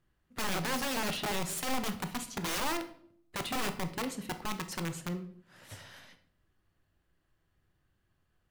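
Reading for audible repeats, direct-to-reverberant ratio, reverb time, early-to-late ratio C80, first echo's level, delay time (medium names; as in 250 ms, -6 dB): no echo, 8.0 dB, 0.60 s, 16.5 dB, no echo, no echo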